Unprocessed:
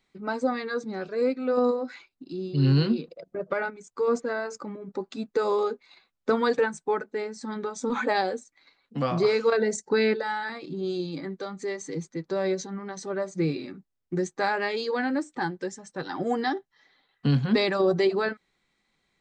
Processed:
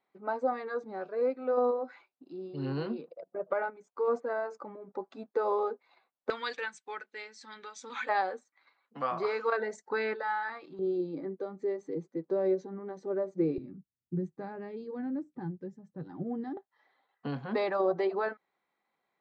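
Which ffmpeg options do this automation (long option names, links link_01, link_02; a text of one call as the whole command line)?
ffmpeg -i in.wav -af "asetnsamples=nb_out_samples=441:pad=0,asendcmd='6.3 bandpass f 2800;8.09 bandpass f 1100;10.79 bandpass f 420;13.58 bandpass f 140;16.57 bandpass f 800',bandpass=frequency=750:width_type=q:width=1.3:csg=0" out.wav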